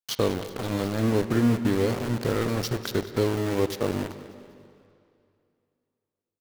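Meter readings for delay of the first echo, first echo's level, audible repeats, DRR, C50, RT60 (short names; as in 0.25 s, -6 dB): 0.197 s, -15.5 dB, 3, 10.0 dB, 10.5 dB, 2.5 s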